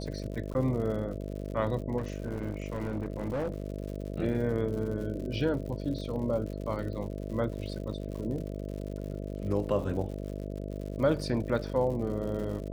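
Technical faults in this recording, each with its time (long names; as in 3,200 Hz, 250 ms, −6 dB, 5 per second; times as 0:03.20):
mains buzz 50 Hz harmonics 13 −37 dBFS
surface crackle 110 per second −39 dBFS
0:00.54–0:00.55: drop-out 9.9 ms
0:01.97–0:03.64: clipping −28 dBFS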